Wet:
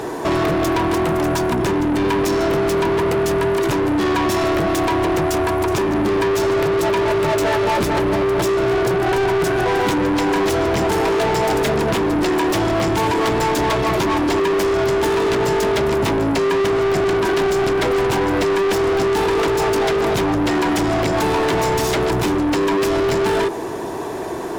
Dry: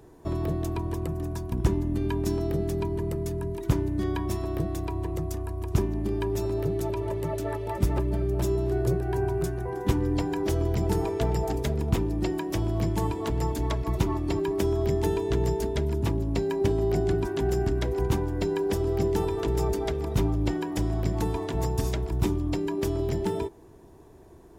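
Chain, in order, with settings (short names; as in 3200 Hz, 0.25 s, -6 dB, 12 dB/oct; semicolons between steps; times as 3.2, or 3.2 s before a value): bell 65 Hz -7 dB 0.56 oct; compressor, threshold -28 dBFS, peak gain reduction 10.5 dB; overdrive pedal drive 34 dB, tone 4100 Hz, clips at -17 dBFS; gain +6 dB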